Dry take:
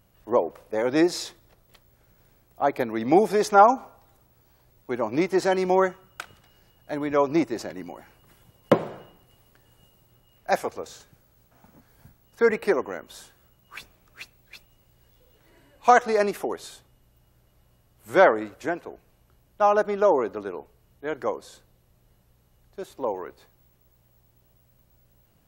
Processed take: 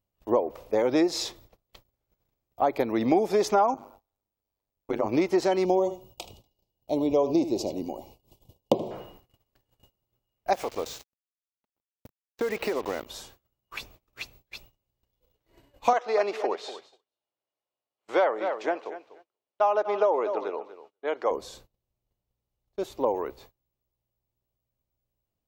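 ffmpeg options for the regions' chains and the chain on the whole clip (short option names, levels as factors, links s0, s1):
-filter_complex "[0:a]asettb=1/sr,asplit=3[s0][s1][s2];[s0]atrim=end=3.744[s3];[s1]atrim=start=3.74:end=5.09,asetpts=PTS-STARTPTS,afade=t=in:d=0.004:c=qsin,afade=t=out:st=1.346:d=0.004:c=qsin,bandreject=f=60:t=h:w=6,bandreject=f=120:t=h:w=6,bandreject=f=180:t=h:w=6,bandreject=f=240:t=h:w=6,bandreject=f=300:t=h:w=6,bandreject=f=360:t=h:w=6,tremolo=f=100:d=0.947[s4];[s2]atrim=start=5.086[s5];[s3][s4]acrossfade=d=0.004:c1=hsin:c2=qsin[s6];[s6][s5]acrossfade=d=0.004:c1=qsin:c2=hsin,asettb=1/sr,asplit=3[s7][s8][s9];[s7]atrim=end=5.654[s10];[s8]atrim=start=5.65:end=8.91,asetpts=PTS-STARTPTS,afade=t=in:d=0.004:c=qsin,afade=t=out:st=3.256:d=0.004:c=qsin,asuperstop=centerf=1600:order=4:qfactor=0.76,aecho=1:1:78:0.2,atrim=end_sample=143766[s11];[s9]atrim=start=8.906[s12];[s10][s11]acrossfade=d=0.004:c1=hsin:c2=qsin[s13];[s13][s12]acrossfade=d=0.004:c1=qsin:c2=hsin,asettb=1/sr,asplit=3[s14][s15][s16];[s14]atrim=end=10.534[s17];[s15]atrim=start=10.53:end=13.06,asetpts=PTS-STARTPTS,afade=t=in:d=0.004:c=qsin,afade=t=out:st=2.526:d=0.004:c=qsin,adynamicequalizer=threshold=0.00708:dfrequency=2300:dqfactor=0.86:tfrequency=2300:tqfactor=0.86:attack=5:release=100:ratio=0.375:range=2:mode=boostabove:tftype=bell,acompressor=threshold=0.0398:ratio=10:attack=3.2:release=140:knee=1:detection=peak,acrusher=bits=6:mix=0:aa=0.5[s18];[s16]atrim=start=13.056[s19];[s17][s18]acrossfade=d=0.004:c1=hsin:c2=qsin[s20];[s20][s19]acrossfade=d=0.004:c1=qsin:c2=hsin,asettb=1/sr,asplit=3[s21][s22][s23];[s21]atrim=end=15.934[s24];[s22]atrim=start=15.93:end=21.31,asetpts=PTS-STARTPTS,afade=t=in:d=0.004:c=qsin,afade=t=out:st=5.376:d=0.004:c=qsin,highpass=490,lowpass=4500,aecho=1:1:242|484:0.188|0.0339,atrim=end_sample=237258[s25];[s23]atrim=start=21.306[s26];[s24][s25]acrossfade=d=0.004:c1=hsin:c2=qsin[s27];[s27][s26]acrossfade=d=0.004:c1=qsin:c2=hsin,acompressor=threshold=0.0562:ratio=4,agate=range=0.0501:threshold=0.00178:ratio=16:detection=peak,equalizer=f=160:t=o:w=0.67:g=-6,equalizer=f=1600:t=o:w=0.67:g=-8,equalizer=f=10000:t=o:w=0.67:g=-9,volume=1.88"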